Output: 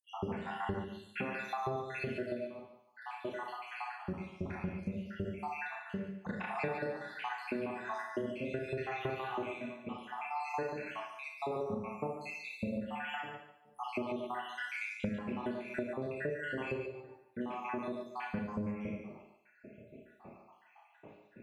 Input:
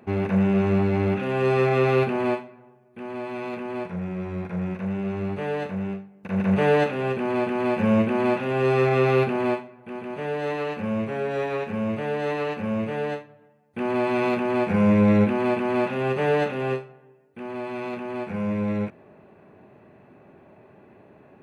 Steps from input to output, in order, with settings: random holes in the spectrogram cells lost 85%; Schroeder reverb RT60 0.49 s, combs from 26 ms, DRR -0.5 dB; compression 12:1, threshold -34 dBFS, peak gain reduction 19.5 dB; on a send: thinning echo 144 ms, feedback 26%, high-pass 460 Hz, level -8 dB

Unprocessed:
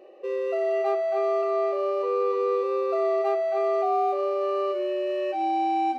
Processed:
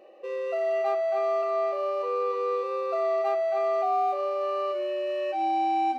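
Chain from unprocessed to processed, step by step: peaking EQ 390 Hz -9.5 dB 0.35 oct

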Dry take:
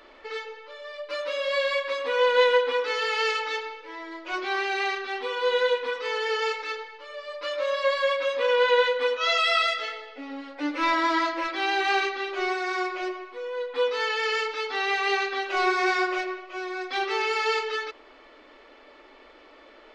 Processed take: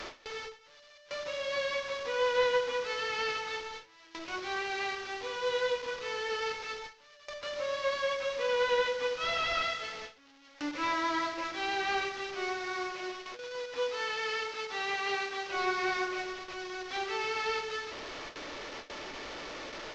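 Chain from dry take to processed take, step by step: one-bit delta coder 32 kbps, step -28.5 dBFS; de-hum 104.4 Hz, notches 15; gate with hold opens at -30 dBFS; 12.93–15.51 s: bass shelf 140 Hz -8 dB; tape noise reduction on one side only encoder only; trim -7.5 dB

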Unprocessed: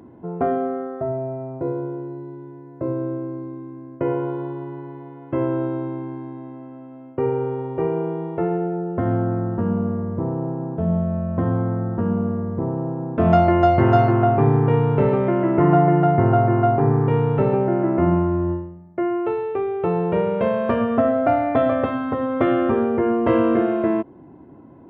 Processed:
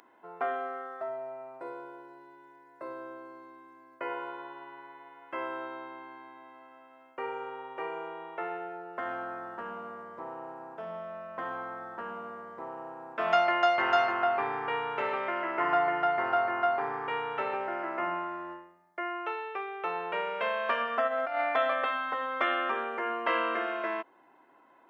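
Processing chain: 21.07–21.55 s: compressor with a negative ratio -20 dBFS, ratio -0.5; high-pass 1.4 kHz 12 dB/octave; trim +3.5 dB

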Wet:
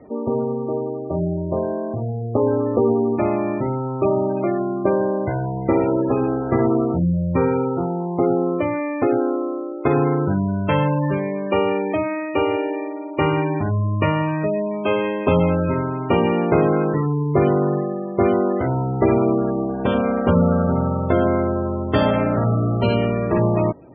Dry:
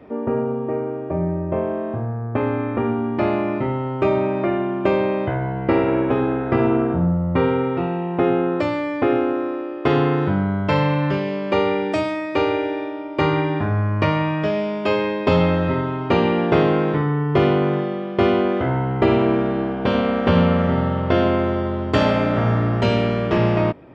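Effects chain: 2.01–3.15 s: peaking EQ 470 Hz +4 dB -> +12.5 dB 0.71 oct; spectral gate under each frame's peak -20 dB strong

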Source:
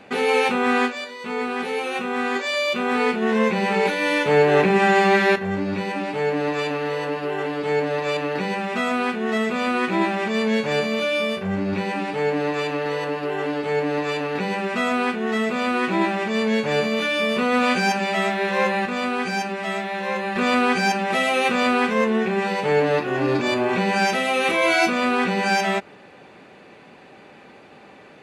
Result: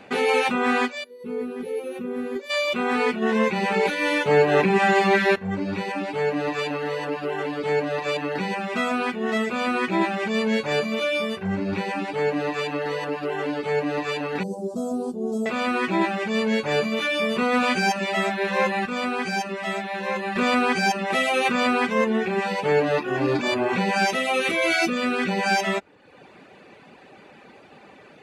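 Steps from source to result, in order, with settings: 1.04–2.50 s: time-frequency box 560–9700 Hz -15 dB; 14.43–15.46 s: Chebyshev band-stop 510–7700 Hz, order 2; reverb removal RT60 0.72 s; 24.40–25.29 s: peaking EQ 900 Hz -15 dB 0.42 oct

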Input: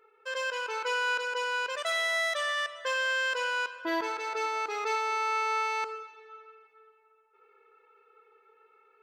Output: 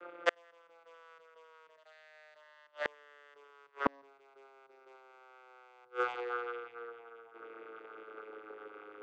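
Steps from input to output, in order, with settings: vocoder on a note that slides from F3, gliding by -9 st; inverted gate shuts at -28 dBFS, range -41 dB; trim +12.5 dB

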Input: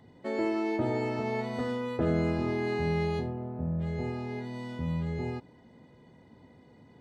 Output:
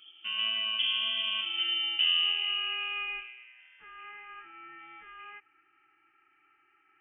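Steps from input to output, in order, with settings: high-pass sweep 100 Hz -> 1.4 kHz, 1.00–3.60 s; frequency inversion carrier 3.3 kHz; trim -2.5 dB

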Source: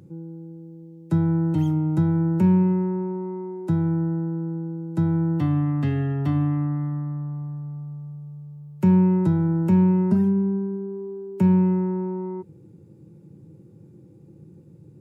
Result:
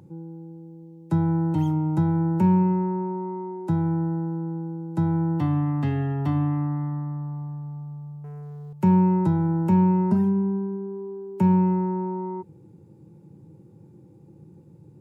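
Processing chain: peaking EQ 880 Hz +9 dB 0.45 oct; 8.24–8.73 s: waveshaping leveller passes 3; trim -1.5 dB

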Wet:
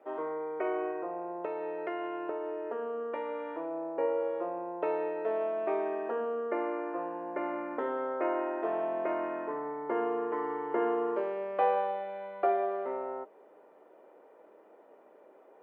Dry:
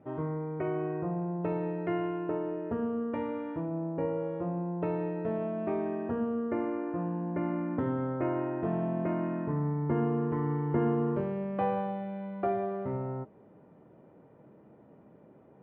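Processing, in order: high-pass 410 Hz 24 dB/octave; 0.89–3.60 s: compression, threshold -36 dBFS, peak gain reduction 5.5 dB; trim +4 dB

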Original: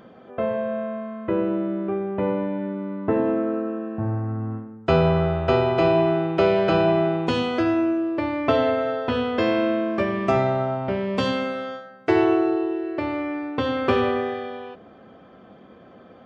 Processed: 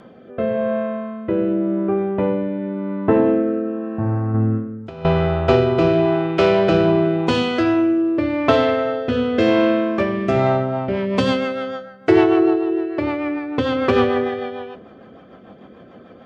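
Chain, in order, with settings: self-modulated delay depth 0.075 ms; 1.52–1.97 s: treble shelf 3.4 kHz -> 2.6 kHz -10 dB; 4.34–5.05 s: compressor with a negative ratio -25 dBFS, ratio -0.5; rotary cabinet horn 0.9 Hz, later 6.7 Hz, at 10.20 s; on a send: reverberation RT60 1.6 s, pre-delay 3 ms, DRR 20 dB; on the sum: trim +6.5 dB

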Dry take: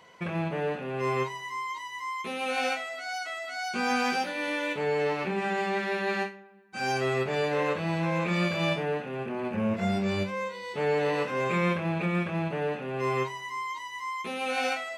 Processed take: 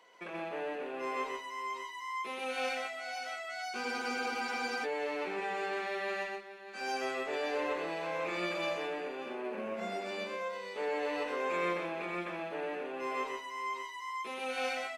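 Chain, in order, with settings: high-pass 280 Hz 24 dB/octave; in parallel at -11.5 dB: one-sided clip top -32.5 dBFS; on the sum: multi-tap echo 126/590 ms -4/-12.5 dB; spectral freeze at 3.85 s, 0.99 s; trim -9 dB

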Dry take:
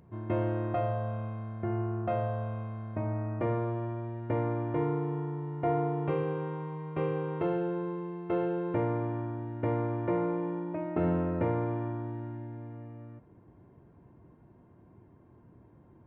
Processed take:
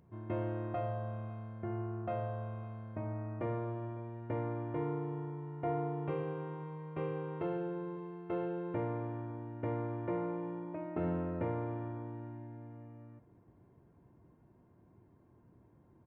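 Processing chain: delay 555 ms -22 dB; trim -6.5 dB

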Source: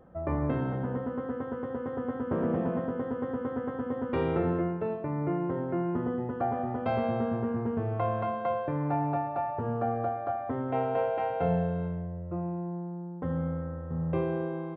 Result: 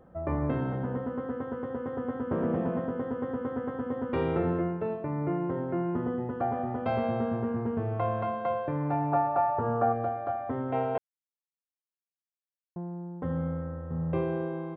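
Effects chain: 9.12–9.93 s: FFT filter 220 Hz 0 dB, 1.3 kHz +8 dB, 2.2 kHz -1 dB; 10.98–12.76 s: mute

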